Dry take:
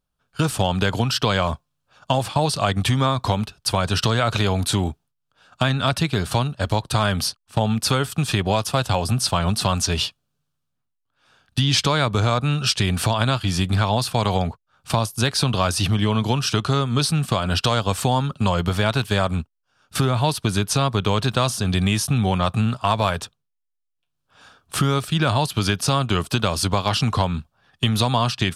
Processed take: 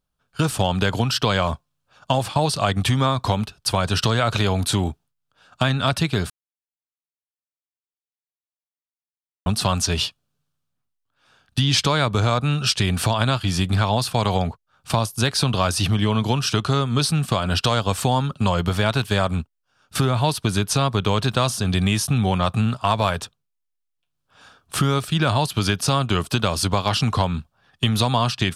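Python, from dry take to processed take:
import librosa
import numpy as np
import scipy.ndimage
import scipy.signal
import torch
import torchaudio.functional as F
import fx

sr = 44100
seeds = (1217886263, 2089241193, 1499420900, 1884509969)

y = fx.edit(x, sr, fx.silence(start_s=6.3, length_s=3.16), tone=tone)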